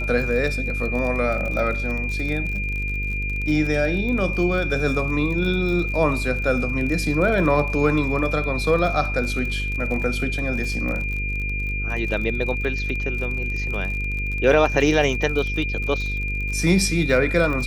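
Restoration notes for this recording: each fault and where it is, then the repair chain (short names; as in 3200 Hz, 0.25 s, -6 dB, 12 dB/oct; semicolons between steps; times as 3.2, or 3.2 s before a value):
buzz 50 Hz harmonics 10 -27 dBFS
crackle 40/s -28 dBFS
tone 2400 Hz -27 dBFS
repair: de-click; notch 2400 Hz, Q 30; de-hum 50 Hz, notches 10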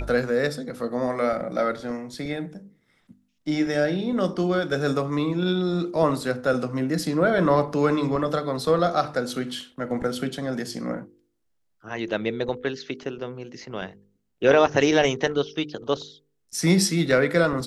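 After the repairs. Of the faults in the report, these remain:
none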